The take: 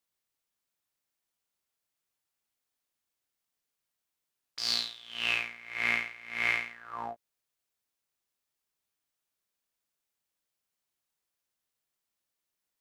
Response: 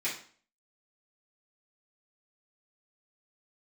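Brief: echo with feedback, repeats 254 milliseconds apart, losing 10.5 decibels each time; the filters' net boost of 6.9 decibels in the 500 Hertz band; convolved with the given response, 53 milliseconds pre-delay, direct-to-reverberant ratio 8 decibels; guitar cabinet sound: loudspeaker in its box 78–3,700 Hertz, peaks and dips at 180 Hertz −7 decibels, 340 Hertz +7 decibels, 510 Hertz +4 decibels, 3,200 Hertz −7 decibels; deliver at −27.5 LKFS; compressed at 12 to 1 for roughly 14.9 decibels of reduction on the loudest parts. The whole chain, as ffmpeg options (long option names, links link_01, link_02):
-filter_complex "[0:a]equalizer=frequency=500:width_type=o:gain=6,acompressor=threshold=-38dB:ratio=12,aecho=1:1:254|508|762:0.299|0.0896|0.0269,asplit=2[link_01][link_02];[1:a]atrim=start_sample=2205,adelay=53[link_03];[link_02][link_03]afir=irnorm=-1:irlink=0,volume=-14.5dB[link_04];[link_01][link_04]amix=inputs=2:normalize=0,highpass=78,equalizer=frequency=180:width_type=q:width=4:gain=-7,equalizer=frequency=340:width_type=q:width=4:gain=7,equalizer=frequency=510:width_type=q:width=4:gain=4,equalizer=frequency=3200:width_type=q:width=4:gain=-7,lowpass=frequency=3700:width=0.5412,lowpass=frequency=3700:width=1.3066,volume=16dB"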